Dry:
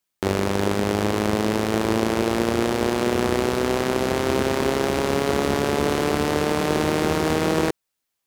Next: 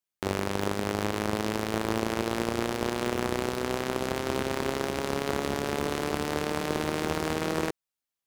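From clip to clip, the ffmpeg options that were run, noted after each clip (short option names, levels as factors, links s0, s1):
-af "aeval=exprs='0.531*(cos(1*acos(clip(val(0)/0.531,-1,1)))-cos(1*PI/2))+0.168*(cos(3*acos(clip(val(0)/0.531,-1,1)))-cos(3*PI/2))+0.0266*(cos(5*acos(clip(val(0)/0.531,-1,1)))-cos(5*PI/2))':c=same,asoftclip=type=hard:threshold=0.237"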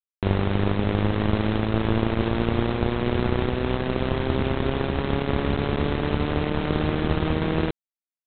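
-af "aemphasis=mode=reproduction:type=riaa,aresample=8000,acrusher=bits=4:mix=0:aa=0.000001,aresample=44100"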